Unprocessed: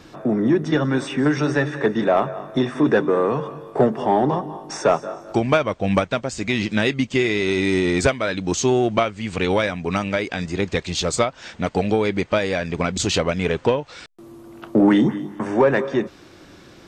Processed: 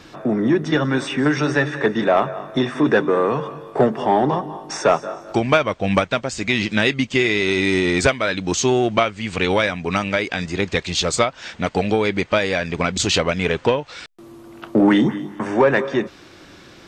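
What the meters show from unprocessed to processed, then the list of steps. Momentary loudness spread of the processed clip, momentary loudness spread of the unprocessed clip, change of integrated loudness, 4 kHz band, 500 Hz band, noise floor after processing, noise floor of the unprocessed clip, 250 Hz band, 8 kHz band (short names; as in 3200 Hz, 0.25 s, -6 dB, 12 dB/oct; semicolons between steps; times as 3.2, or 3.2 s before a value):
7 LU, 7 LU, +1.5 dB, +4.0 dB, +1.0 dB, -45 dBFS, -46 dBFS, +0.5 dB, +2.5 dB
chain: bell 2700 Hz +4.5 dB 2.9 oct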